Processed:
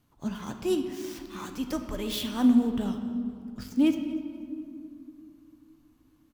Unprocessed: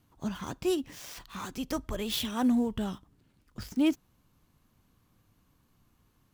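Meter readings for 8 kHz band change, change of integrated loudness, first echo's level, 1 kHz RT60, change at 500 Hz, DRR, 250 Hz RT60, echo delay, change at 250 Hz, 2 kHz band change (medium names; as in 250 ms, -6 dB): -1.0 dB, +2.5 dB, -20.0 dB, 2.1 s, +1.5 dB, 6.0 dB, 3.6 s, 242 ms, +4.5 dB, -0.5 dB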